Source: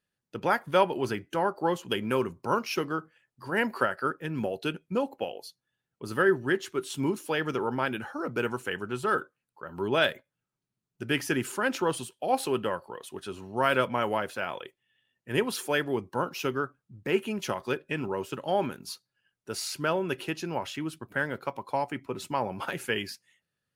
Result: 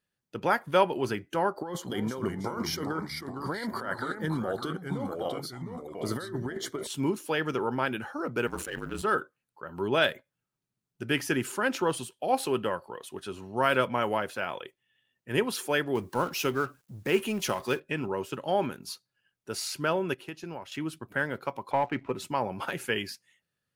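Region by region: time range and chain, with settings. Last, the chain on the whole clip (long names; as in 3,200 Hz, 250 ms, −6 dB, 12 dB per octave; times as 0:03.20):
0:01.56–0:06.87: compressor whose output falls as the input rises −33 dBFS + delay with pitch and tempo change per echo 296 ms, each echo −2 semitones, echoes 3, each echo −6 dB + Butterworth band-reject 2,600 Hz, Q 3.3
0:08.47–0:09.02: mu-law and A-law mismatch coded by A + ring modulation 49 Hz + level that may fall only so fast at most 59 dB per second
0:15.95–0:17.80: mu-law and A-law mismatch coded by mu + high-shelf EQ 4,500 Hz +6 dB
0:20.14–0:20.72: noise gate −36 dBFS, range −9 dB + downward compressor 4 to 1, threshold −35 dBFS
0:21.71–0:22.12: Butterworth low-pass 3,100 Hz + upward compression, threshold −40 dBFS + leveller curve on the samples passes 1
whole clip: no processing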